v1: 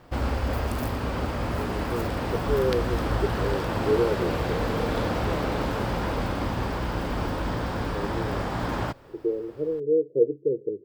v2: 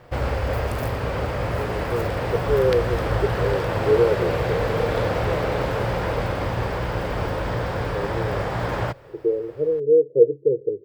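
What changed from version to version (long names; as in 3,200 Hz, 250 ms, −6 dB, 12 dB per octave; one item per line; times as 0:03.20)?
master: add octave-band graphic EQ 125/250/500/2,000 Hz +7/−7/+8/+5 dB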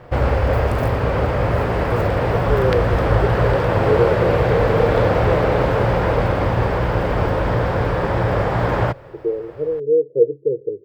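background +7.0 dB
master: add high-shelf EQ 3,300 Hz −10.5 dB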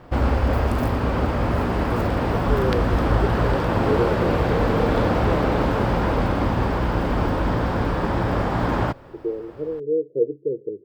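master: add octave-band graphic EQ 125/250/500/2,000 Hz −7/+7/−8/−5 dB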